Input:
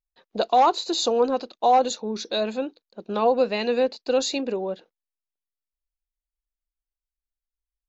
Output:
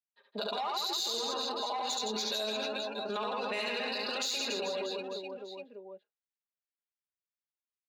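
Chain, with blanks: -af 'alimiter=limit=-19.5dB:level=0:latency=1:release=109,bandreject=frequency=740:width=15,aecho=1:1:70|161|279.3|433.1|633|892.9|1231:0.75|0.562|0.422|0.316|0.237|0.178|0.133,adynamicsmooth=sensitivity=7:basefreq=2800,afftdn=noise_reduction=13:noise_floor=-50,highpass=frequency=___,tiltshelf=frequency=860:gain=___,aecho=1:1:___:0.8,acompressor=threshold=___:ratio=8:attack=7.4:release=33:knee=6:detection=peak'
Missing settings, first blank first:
230, -9, 4.9, -34dB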